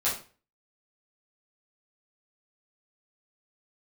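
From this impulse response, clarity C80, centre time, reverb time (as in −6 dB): 12.5 dB, 31 ms, 0.40 s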